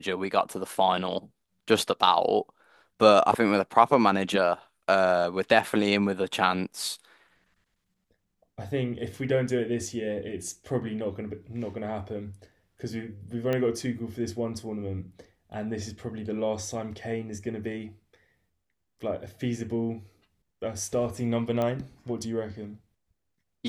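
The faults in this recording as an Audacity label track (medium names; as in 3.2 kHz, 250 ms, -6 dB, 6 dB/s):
13.530000	13.530000	pop -16 dBFS
21.620000	21.620000	pop -17 dBFS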